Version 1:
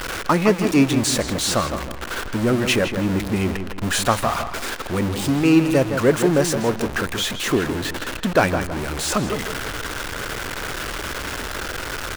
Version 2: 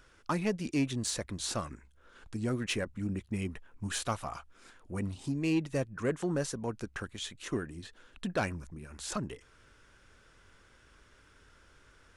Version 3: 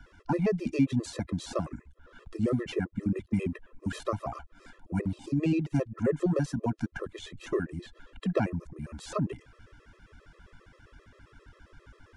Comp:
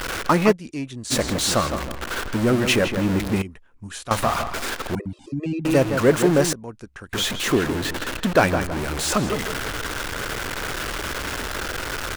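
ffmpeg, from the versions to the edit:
-filter_complex "[1:a]asplit=3[a][b][c];[0:a]asplit=5[d][e][f][g][h];[d]atrim=end=0.53[i];[a]atrim=start=0.51:end=1.12[j];[e]atrim=start=1.1:end=3.422[k];[b]atrim=start=3.418:end=4.112[l];[f]atrim=start=4.108:end=4.952[m];[2:a]atrim=start=4.948:end=5.652[n];[g]atrim=start=5.648:end=6.532[o];[c]atrim=start=6.528:end=7.132[p];[h]atrim=start=7.128[q];[i][j]acrossfade=d=0.02:c1=tri:c2=tri[r];[r][k]acrossfade=d=0.02:c1=tri:c2=tri[s];[s][l]acrossfade=d=0.004:c1=hsin:c2=hsin[t];[t][m]acrossfade=d=0.004:c1=hsin:c2=hsin[u];[u][n]acrossfade=d=0.004:c1=hsin:c2=hsin[v];[v][o]acrossfade=d=0.004:c1=hsin:c2=hsin[w];[w][p]acrossfade=d=0.004:c1=hsin:c2=hsin[x];[x][q]acrossfade=d=0.004:c1=hsin:c2=hsin"

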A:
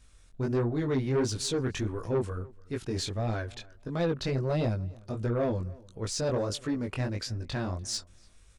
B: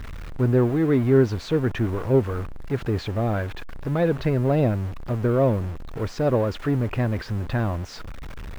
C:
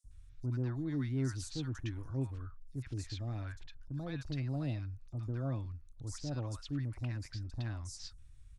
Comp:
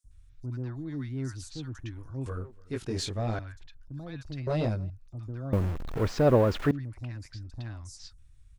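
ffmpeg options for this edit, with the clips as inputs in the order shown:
-filter_complex "[0:a]asplit=2[a][b];[2:a]asplit=4[c][d][e][f];[c]atrim=end=2.262[g];[a]atrim=start=2.258:end=3.392[h];[d]atrim=start=3.388:end=4.472[i];[b]atrim=start=4.468:end=4.902[j];[e]atrim=start=4.898:end=5.532[k];[1:a]atrim=start=5.528:end=6.712[l];[f]atrim=start=6.708[m];[g][h]acrossfade=d=0.004:c1=hsin:c2=hsin[n];[n][i]acrossfade=d=0.004:c1=hsin:c2=hsin[o];[o][j]acrossfade=d=0.004:c1=hsin:c2=hsin[p];[p][k]acrossfade=d=0.004:c1=hsin:c2=hsin[q];[q][l]acrossfade=d=0.004:c1=hsin:c2=hsin[r];[r][m]acrossfade=d=0.004:c1=hsin:c2=hsin"

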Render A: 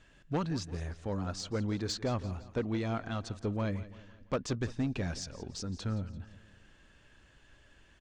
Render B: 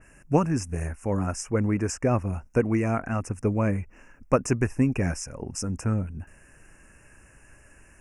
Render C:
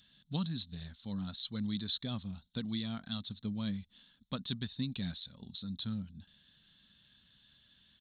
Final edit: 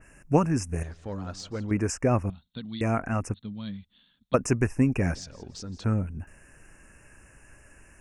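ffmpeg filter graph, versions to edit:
-filter_complex "[0:a]asplit=2[a][b];[2:a]asplit=2[c][d];[1:a]asplit=5[e][f][g][h][i];[e]atrim=end=0.832[j];[a]atrim=start=0.828:end=1.712[k];[f]atrim=start=1.708:end=2.302[l];[c]atrim=start=2.298:end=2.812[m];[g]atrim=start=2.808:end=3.342[n];[d]atrim=start=3.338:end=4.342[o];[h]atrim=start=4.338:end=5.152[p];[b]atrim=start=5.148:end=5.842[q];[i]atrim=start=5.838[r];[j][k]acrossfade=d=0.004:c1=hsin:c2=hsin[s];[s][l]acrossfade=d=0.004:c1=hsin:c2=hsin[t];[t][m]acrossfade=d=0.004:c1=hsin:c2=hsin[u];[u][n]acrossfade=d=0.004:c1=hsin:c2=hsin[v];[v][o]acrossfade=d=0.004:c1=hsin:c2=hsin[w];[w][p]acrossfade=d=0.004:c1=hsin:c2=hsin[x];[x][q]acrossfade=d=0.004:c1=hsin:c2=hsin[y];[y][r]acrossfade=d=0.004:c1=hsin:c2=hsin"

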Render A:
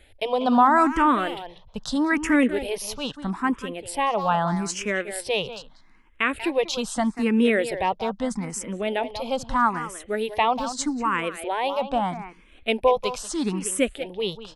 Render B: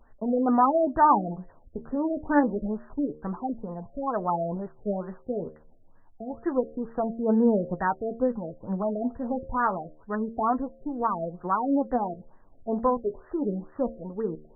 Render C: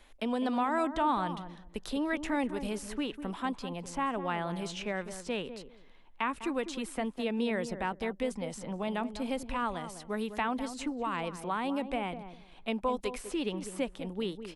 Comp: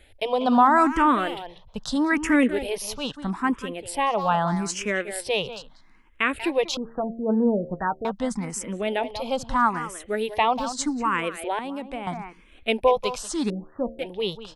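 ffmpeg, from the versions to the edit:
-filter_complex "[1:a]asplit=2[a][b];[0:a]asplit=4[c][d][e][f];[c]atrim=end=6.772[g];[a]atrim=start=6.768:end=8.052[h];[d]atrim=start=8.048:end=11.592[i];[2:a]atrim=start=11.588:end=12.072[j];[e]atrim=start=12.068:end=13.502[k];[b]atrim=start=13.498:end=13.992[l];[f]atrim=start=13.988[m];[g][h]acrossfade=d=0.004:c1=hsin:c2=hsin[n];[n][i]acrossfade=d=0.004:c1=hsin:c2=hsin[o];[o][j]acrossfade=d=0.004:c1=hsin:c2=hsin[p];[p][k]acrossfade=d=0.004:c1=hsin:c2=hsin[q];[q][l]acrossfade=d=0.004:c1=hsin:c2=hsin[r];[r][m]acrossfade=d=0.004:c1=hsin:c2=hsin"

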